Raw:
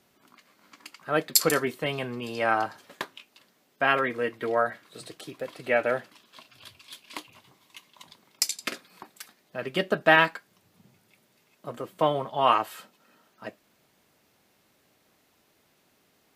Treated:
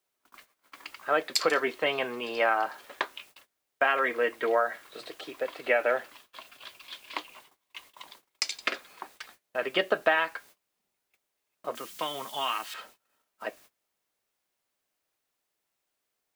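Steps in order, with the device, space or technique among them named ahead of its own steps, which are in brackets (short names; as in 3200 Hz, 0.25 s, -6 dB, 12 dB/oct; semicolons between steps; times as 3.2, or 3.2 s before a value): baby monitor (BPF 440–3600 Hz; compressor 12:1, threshold -25 dBFS, peak gain reduction 12 dB; white noise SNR 27 dB; gate -57 dBFS, range -24 dB); 11.75–12.74 EQ curve 230 Hz 0 dB, 550 Hz -13 dB, 6000 Hz +12 dB; gain +5 dB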